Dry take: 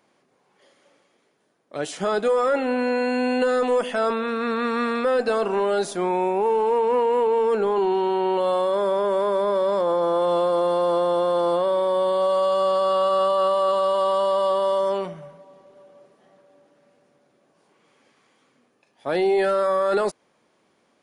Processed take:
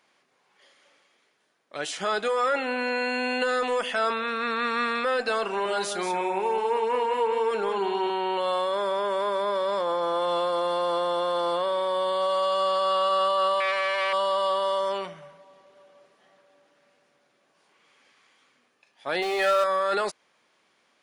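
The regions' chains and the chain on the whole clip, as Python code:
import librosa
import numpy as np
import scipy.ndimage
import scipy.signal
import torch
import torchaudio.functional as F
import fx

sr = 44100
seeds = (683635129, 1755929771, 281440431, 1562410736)

y = fx.chain(x, sr, fx.high_shelf(hz=8000.0, db=3.0),
    fx.echo_single(ms=183, db=-7.0),
    fx.filter_lfo_notch(shape='saw_up', hz=5.4, low_hz=630.0, high_hz=7100.0, q=2.8), at=(5.47, 8.1))
y = fx.chain(y, sr, fx.highpass(hz=180.0, slope=6),
    fx.transformer_sat(knee_hz=1200.0), at=(13.6, 14.13))
y = fx.chain(y, sr, fx.zero_step(step_db=-30.0),
    fx.peak_eq(hz=94.0, db=-12.5, octaves=1.5),
    fx.comb(ms=6.8, depth=0.52), at=(19.22, 19.64))
y = fx.lowpass(y, sr, hz=2500.0, slope=6)
y = fx.tilt_shelf(y, sr, db=-10.0, hz=1100.0)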